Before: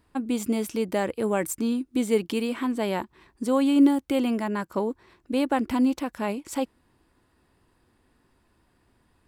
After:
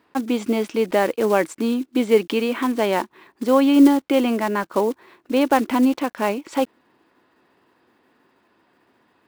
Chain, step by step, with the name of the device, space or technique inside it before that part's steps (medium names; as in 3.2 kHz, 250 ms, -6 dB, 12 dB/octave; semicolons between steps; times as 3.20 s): early digital voice recorder (band-pass 270–3700 Hz; block-companded coder 5-bit); trim +8 dB